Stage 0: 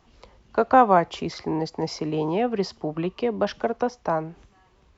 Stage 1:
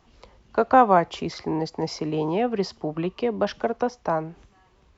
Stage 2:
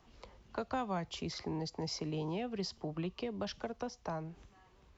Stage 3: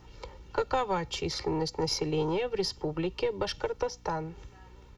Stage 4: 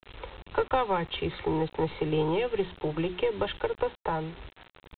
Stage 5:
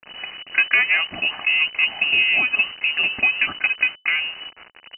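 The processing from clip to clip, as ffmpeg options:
-af anull
-filter_complex "[0:a]acrossover=split=160|3000[s0][s1][s2];[s1]acompressor=threshold=0.0141:ratio=3[s3];[s0][s3][s2]amix=inputs=3:normalize=0,volume=0.596"
-af "aecho=1:1:2.2:0.95,aeval=exprs='0.0841*(cos(1*acos(clip(val(0)/0.0841,-1,1)))-cos(1*PI/2))+0.00596*(cos(4*acos(clip(val(0)/0.0841,-1,1)))-cos(4*PI/2))':c=same,aeval=exprs='val(0)+0.001*(sin(2*PI*60*n/s)+sin(2*PI*2*60*n/s)/2+sin(2*PI*3*60*n/s)/3+sin(2*PI*4*60*n/s)/4+sin(2*PI*5*60*n/s)/5)':c=same,volume=2"
-af "bandreject=f=60:t=h:w=6,bandreject=f=120:t=h:w=6,bandreject=f=180:t=h:w=6,bandreject=f=240:t=h:w=6,bandreject=f=300:t=h:w=6,bandreject=f=360:t=h:w=6,aresample=8000,acrusher=bits=7:mix=0:aa=0.000001,aresample=44100,volume=1.33"
-af "lowpass=f=2600:t=q:w=0.5098,lowpass=f=2600:t=q:w=0.6013,lowpass=f=2600:t=q:w=0.9,lowpass=f=2600:t=q:w=2.563,afreqshift=-3000,volume=2.66"

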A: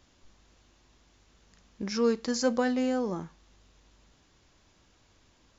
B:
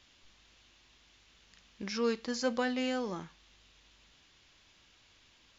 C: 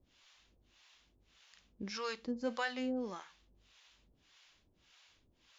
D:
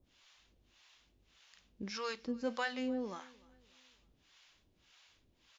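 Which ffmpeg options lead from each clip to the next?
-filter_complex "[0:a]equalizer=f=3000:t=o:w=2.1:g=13.5,acrossover=split=1300[s0][s1];[s1]alimiter=limit=0.075:level=0:latency=1:release=217[s2];[s0][s2]amix=inputs=2:normalize=0,volume=0.473"
-filter_complex "[0:a]acrossover=split=590[s0][s1];[s0]aeval=exprs='val(0)*(1-1/2+1/2*cos(2*PI*1.7*n/s))':c=same[s2];[s1]aeval=exprs='val(0)*(1-1/2-1/2*cos(2*PI*1.7*n/s))':c=same[s3];[s2][s3]amix=inputs=2:normalize=0"
-af "aecho=1:1:298|596|894:0.0631|0.0265|0.0111"

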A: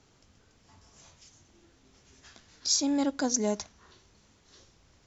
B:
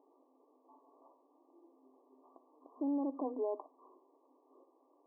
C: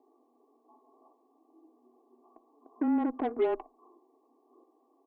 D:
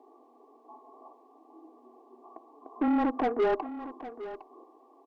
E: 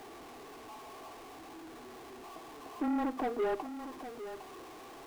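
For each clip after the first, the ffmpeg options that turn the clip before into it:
-af "afftfilt=real='re*between(b*sr/4096,250,1200)':imag='im*between(b*sr/4096,250,1200)':win_size=4096:overlap=0.75,alimiter=level_in=1.58:limit=0.0631:level=0:latency=1:release=35,volume=0.631"
-af "aecho=1:1:2.6:0.74,aeval=exprs='0.0631*(cos(1*acos(clip(val(0)/0.0631,-1,1)))-cos(1*PI/2))+0.00447*(cos(7*acos(clip(val(0)/0.0631,-1,1)))-cos(7*PI/2))':c=same,afreqshift=-18,volume=1.88"
-filter_complex "[0:a]asplit=2[s0][s1];[s1]highpass=f=720:p=1,volume=10,asoftclip=type=tanh:threshold=0.119[s2];[s0][s2]amix=inputs=2:normalize=0,lowpass=f=2000:p=1,volume=0.501,aecho=1:1:809:0.2"
-af "aeval=exprs='val(0)+0.5*0.0126*sgn(val(0))':c=same,volume=0.447"

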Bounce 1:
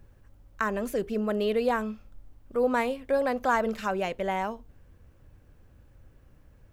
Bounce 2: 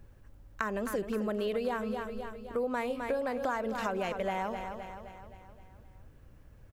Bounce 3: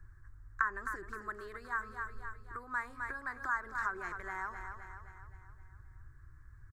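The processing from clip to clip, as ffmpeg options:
-filter_complex "[0:a]asplit=2[s0][s1];[s1]aecho=0:1:260|520|780|1040|1300|1560:0.282|0.149|0.0792|0.042|0.0222|0.0118[s2];[s0][s2]amix=inputs=2:normalize=0,acompressor=threshold=0.0355:ratio=6"
-filter_complex "[0:a]firequalizer=gain_entry='entry(120,0);entry(200,-26);entry(350,-7);entry(510,-29);entry(1100,1);entry(1700,5);entry(2800,-27);entry(3900,-13);entry(7900,-5);entry(11000,-13)':delay=0.05:min_phase=1,acrossover=split=290|2600[s0][s1][s2];[s2]alimiter=level_in=11.2:limit=0.0631:level=0:latency=1:release=296,volume=0.0891[s3];[s0][s1][s3]amix=inputs=3:normalize=0,volume=1.12"

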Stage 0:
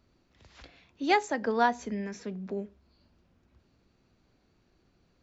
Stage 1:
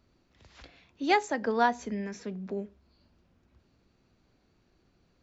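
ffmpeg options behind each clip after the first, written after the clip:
-af anull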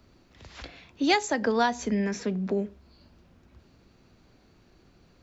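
-filter_complex "[0:a]acrossover=split=150|3000[s0][s1][s2];[s1]acompressor=threshold=0.0224:ratio=3[s3];[s0][s3][s2]amix=inputs=3:normalize=0,volume=2.82"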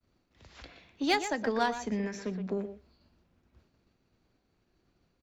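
-filter_complex "[0:a]asplit=2[s0][s1];[s1]adelay=120,highpass=300,lowpass=3400,asoftclip=type=hard:threshold=0.119,volume=0.447[s2];[s0][s2]amix=inputs=2:normalize=0,aeval=exprs='0.299*(cos(1*acos(clip(val(0)/0.299,-1,1)))-cos(1*PI/2))+0.0119*(cos(7*acos(clip(val(0)/0.299,-1,1)))-cos(7*PI/2))':c=same,agate=range=0.0224:threshold=0.00178:ratio=3:detection=peak,volume=0.596"

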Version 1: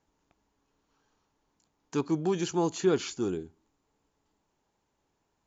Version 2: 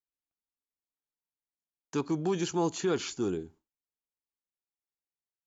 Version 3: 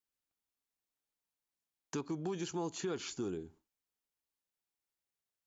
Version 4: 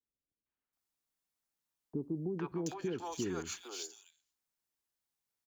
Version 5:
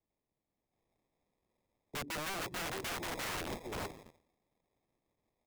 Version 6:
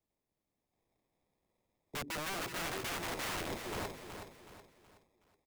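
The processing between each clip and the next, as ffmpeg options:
-filter_complex "[0:a]agate=range=0.0224:threshold=0.00355:ratio=3:detection=peak,acrossover=split=730[s0][s1];[s0]alimiter=limit=0.0794:level=0:latency=1[s2];[s2][s1]amix=inputs=2:normalize=0"
-af "acompressor=threshold=0.00708:ratio=2.5,volume=1.33"
-filter_complex "[0:a]acrossover=split=220|460|1800[s0][s1][s2][s3];[s3]acrusher=bits=4:mode=log:mix=0:aa=0.000001[s4];[s0][s1][s2][s4]amix=inputs=4:normalize=0,acrossover=split=520|2700[s5][s6][s7];[s6]adelay=460[s8];[s7]adelay=730[s9];[s5][s8][s9]amix=inputs=3:normalize=0,volume=1.33"
-filter_complex "[0:a]acrossover=split=410|810[s0][s1][s2];[s2]acrusher=samples=30:mix=1:aa=0.000001[s3];[s0][s1][s3]amix=inputs=3:normalize=0,aeval=exprs='(mod(94.4*val(0)+1,2)-1)/94.4':c=same,volume=1.88"
-af "aecho=1:1:372|744|1116|1488:0.398|0.155|0.0606|0.0236"

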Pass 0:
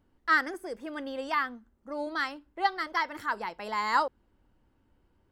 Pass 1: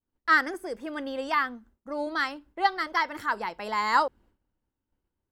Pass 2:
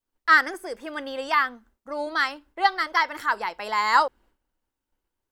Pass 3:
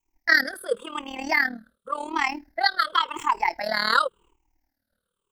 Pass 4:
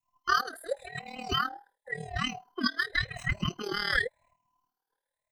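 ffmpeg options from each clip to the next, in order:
-af "agate=range=0.0224:threshold=0.00178:ratio=3:detection=peak,volume=1.41"
-af "equalizer=f=120:w=0.38:g=-12,volume=1.78"
-filter_complex "[0:a]afftfilt=real='re*pow(10,22/40*sin(2*PI*(0.7*log(max(b,1)*sr/1024/100)/log(2)-(-0.91)*(pts-256)/sr)))':imag='im*pow(10,22/40*sin(2*PI*(0.7*log(max(b,1)*sr/1024/100)/log(2)-(-0.91)*(pts-256)/sr)))':win_size=1024:overlap=0.75,acrossover=split=450|3000[s0][s1][s2];[s1]acompressor=threshold=0.126:ratio=6[s3];[s0][s3][s2]amix=inputs=3:normalize=0,tremolo=f=38:d=0.788,volume=1.33"
-af "afftfilt=real='real(if(between(b,1,1008),(2*floor((b-1)/48)+1)*48-b,b),0)':imag='imag(if(between(b,1,1008),(2*floor((b-1)/48)+1)*48-b,b),0)*if(between(b,1,1008),-1,1)':win_size=2048:overlap=0.75,volume=0.447"

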